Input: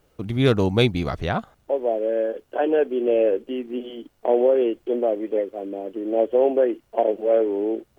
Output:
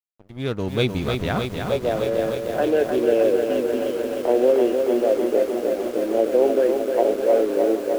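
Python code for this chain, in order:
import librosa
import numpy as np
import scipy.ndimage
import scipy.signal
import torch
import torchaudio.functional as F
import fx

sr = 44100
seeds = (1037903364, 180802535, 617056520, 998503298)

y = fx.fade_in_head(x, sr, length_s=1.23)
y = fx.peak_eq(y, sr, hz=840.0, db=-3.0, octaves=0.65)
y = np.sign(y) * np.maximum(np.abs(y) - 10.0 ** (-43.0 / 20.0), 0.0)
y = y + 10.0 ** (-16.5 / 20.0) * np.pad(y, (int(772 * sr / 1000.0), 0))[:len(y)]
y = fx.echo_crushed(y, sr, ms=306, feedback_pct=80, bits=7, wet_db=-5)
y = y * 10.0 ** (1.0 / 20.0)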